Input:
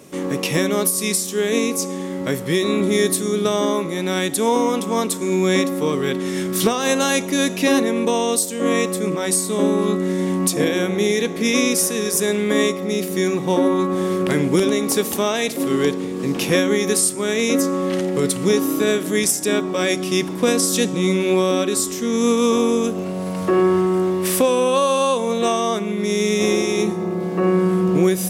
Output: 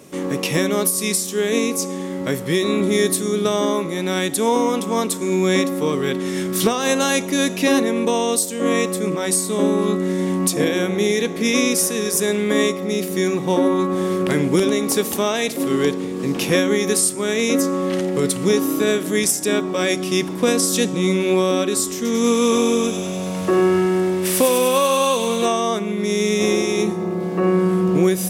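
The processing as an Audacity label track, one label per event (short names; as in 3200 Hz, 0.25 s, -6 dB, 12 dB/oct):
21.950000	25.460000	thin delay 98 ms, feedback 78%, high-pass 1900 Hz, level -3.5 dB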